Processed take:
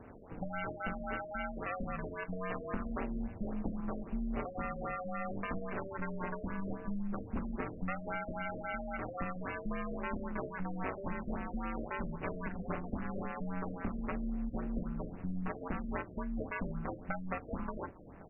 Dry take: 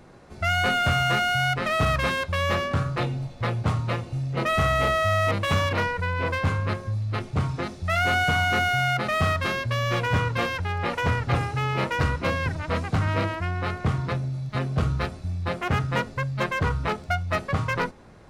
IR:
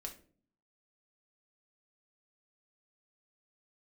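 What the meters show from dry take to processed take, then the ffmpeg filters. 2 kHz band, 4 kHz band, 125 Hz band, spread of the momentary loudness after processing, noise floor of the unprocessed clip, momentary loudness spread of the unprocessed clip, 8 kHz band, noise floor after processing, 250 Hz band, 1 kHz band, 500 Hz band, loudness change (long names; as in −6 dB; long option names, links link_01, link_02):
−18.0 dB, below −30 dB, −19.5 dB, 2 LU, −43 dBFS, 7 LU, below −40 dB, −49 dBFS, −6.0 dB, −15.5 dB, −13.0 dB, −15.0 dB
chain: -af "lowpass=3800,acompressor=threshold=-31dB:ratio=10,aecho=1:1:1104:0.0794,flanger=delay=5.7:depth=5.2:regen=-65:speed=0.69:shape=triangular,aeval=exprs='val(0)*sin(2*PI*95*n/s)':channel_layout=same,afftfilt=real='re*lt(b*sr/1024,640*pow(3000/640,0.5+0.5*sin(2*PI*3.7*pts/sr)))':imag='im*lt(b*sr/1024,640*pow(3000/640,0.5+0.5*sin(2*PI*3.7*pts/sr)))':win_size=1024:overlap=0.75,volume=4.5dB"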